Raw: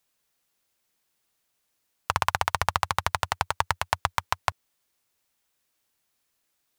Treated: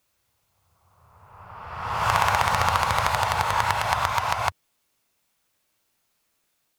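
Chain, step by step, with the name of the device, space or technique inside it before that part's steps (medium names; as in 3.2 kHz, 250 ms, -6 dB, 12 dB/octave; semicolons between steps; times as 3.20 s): reverse reverb (reverse; reverberation RT60 1.8 s, pre-delay 3 ms, DRR -3.5 dB; reverse)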